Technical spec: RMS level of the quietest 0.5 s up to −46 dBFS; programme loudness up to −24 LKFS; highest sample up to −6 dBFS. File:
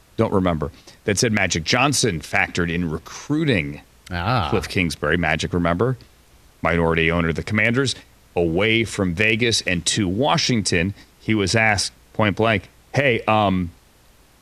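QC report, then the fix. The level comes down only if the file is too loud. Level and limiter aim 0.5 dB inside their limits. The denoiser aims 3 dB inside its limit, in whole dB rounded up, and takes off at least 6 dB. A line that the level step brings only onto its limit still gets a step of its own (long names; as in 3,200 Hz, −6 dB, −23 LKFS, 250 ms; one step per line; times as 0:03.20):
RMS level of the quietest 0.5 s −53 dBFS: in spec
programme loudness −20.0 LKFS: out of spec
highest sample −3.5 dBFS: out of spec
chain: level −4.5 dB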